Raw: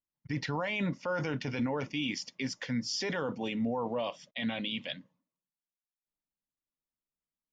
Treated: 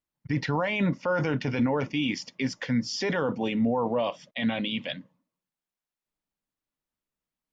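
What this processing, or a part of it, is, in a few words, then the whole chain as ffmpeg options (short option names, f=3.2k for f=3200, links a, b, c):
behind a face mask: -af "highshelf=f=3.4k:g=-8,volume=7dB"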